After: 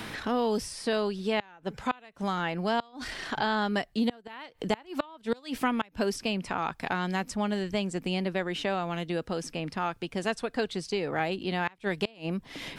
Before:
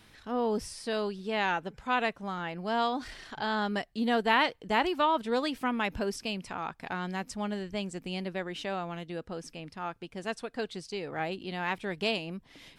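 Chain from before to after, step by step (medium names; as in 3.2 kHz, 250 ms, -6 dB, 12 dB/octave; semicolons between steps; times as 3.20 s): inverted gate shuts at -19 dBFS, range -28 dB; three bands compressed up and down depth 70%; trim +4 dB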